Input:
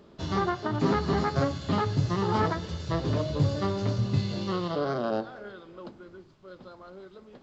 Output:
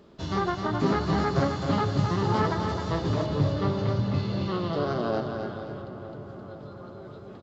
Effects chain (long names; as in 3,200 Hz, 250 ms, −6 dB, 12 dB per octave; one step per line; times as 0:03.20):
0:03.26–0:04.73: low-pass filter 4,200 Hz 12 dB per octave
repeating echo 262 ms, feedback 41%, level −6 dB
0:05.81–0:07.05: downward compressor, threshold −44 dBFS, peak gain reduction 7.5 dB
feedback echo with a low-pass in the loop 462 ms, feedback 79%, low-pass 2,500 Hz, level −13.5 dB